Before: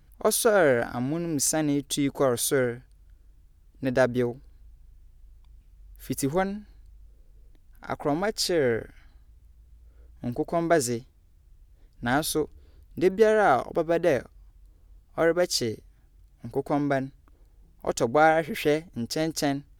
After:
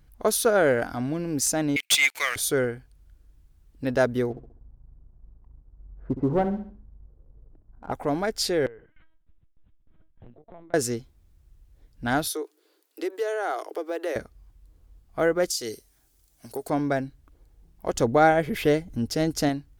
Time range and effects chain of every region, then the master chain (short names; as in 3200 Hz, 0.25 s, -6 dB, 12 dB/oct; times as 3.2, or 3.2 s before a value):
1.76–2.36 resonant high-pass 2300 Hz, resonance Q 10 + sample leveller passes 3
4.3–7.92 LPF 1100 Hz 24 dB/oct + sample leveller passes 1 + feedback echo 66 ms, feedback 40%, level -11 dB
8.66–10.74 LPC vocoder at 8 kHz pitch kept + compressor 3:1, threshold -45 dBFS + tremolo saw down 3.3 Hz, depth 85%
12.27–14.16 Chebyshev high-pass 310 Hz, order 6 + high shelf 3900 Hz +6.5 dB + compressor 2:1, threshold -30 dBFS
15.5–16.7 tone controls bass -11 dB, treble +13 dB + compressor 5:1, threshold -26 dBFS
17.94–19.49 low shelf 300 Hz +6.5 dB + upward compressor, threshold -35 dBFS
whole clip: dry